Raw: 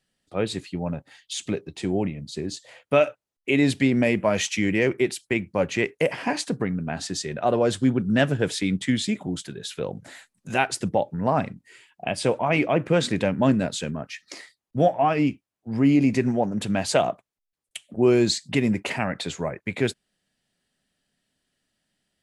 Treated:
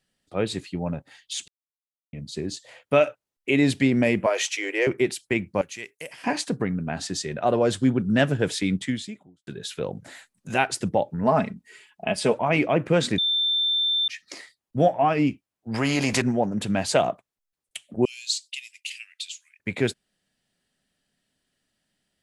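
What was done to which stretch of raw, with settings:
1.48–2.13 mute
4.26–4.87 steep high-pass 350 Hz 48 dB/oct
5.61–6.24 pre-emphasis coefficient 0.9
8.76–9.47 fade out quadratic
11.23–12.34 comb 4.7 ms, depth 59%
13.18–14.08 bleep 3560 Hz -20 dBFS
15.74–16.22 spectral compressor 2:1
18.05–19.6 elliptic high-pass 2700 Hz, stop band 80 dB

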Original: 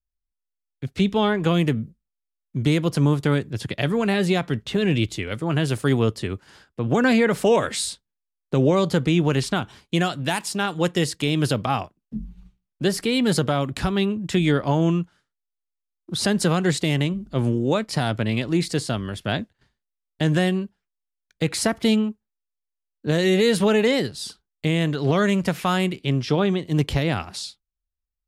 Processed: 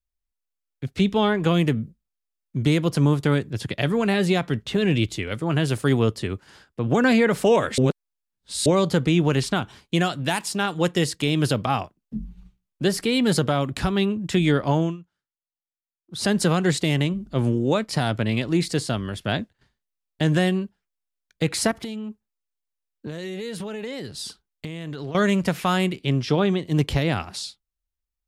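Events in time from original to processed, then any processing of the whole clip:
7.78–8.66 reverse
14.77–16.29 dip -18 dB, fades 0.20 s
21.71–25.15 compressor 12:1, threshold -28 dBFS

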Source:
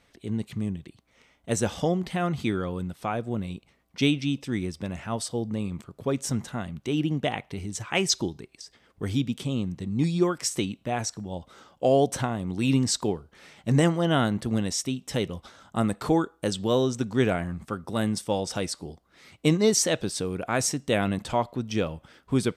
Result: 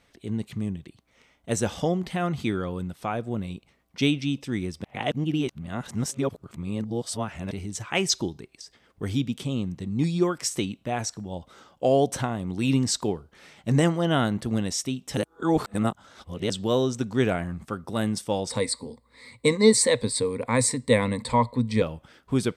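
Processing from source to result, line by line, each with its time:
4.84–7.51 reverse
15.17–16.5 reverse
18.5–21.82 ripple EQ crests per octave 0.97, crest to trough 16 dB

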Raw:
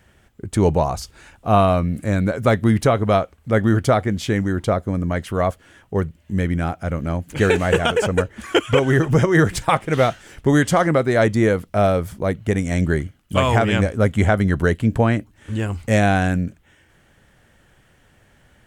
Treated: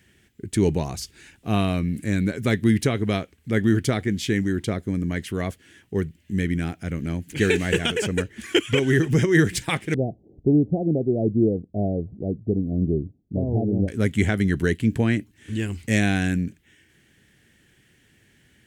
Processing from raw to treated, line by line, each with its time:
9.94–13.88 steep low-pass 760 Hz 72 dB/oct
whole clip: HPF 150 Hz 6 dB/oct; band shelf 840 Hz -13 dB

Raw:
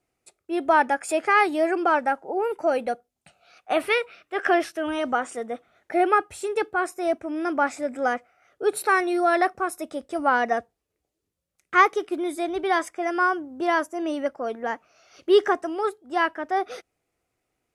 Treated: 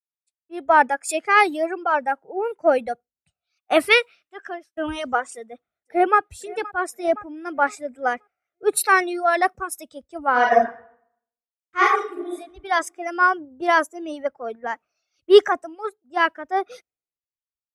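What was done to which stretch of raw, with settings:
3.98–4.77 fade out
5.33–6.19 echo throw 0.52 s, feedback 50%, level -11.5 dB
10.31–12.34 reverb throw, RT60 1.3 s, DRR -5.5 dB
whole clip: reverb removal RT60 1.9 s; AGC gain up to 11.5 dB; three-band expander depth 100%; gain -6 dB

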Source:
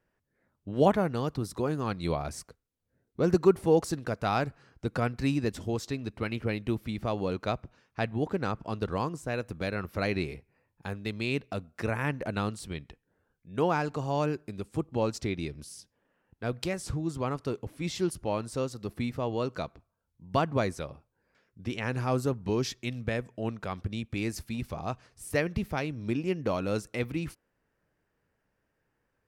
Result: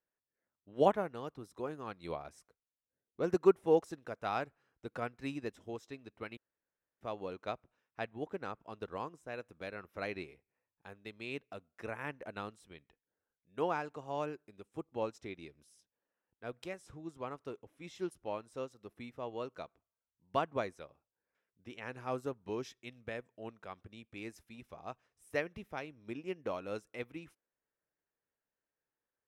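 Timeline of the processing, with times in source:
6.37–7.01 room tone
whole clip: tone controls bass -10 dB, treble -4 dB; notch 4500 Hz, Q 6.8; upward expander 1.5:1, over -45 dBFS; gain -1.5 dB

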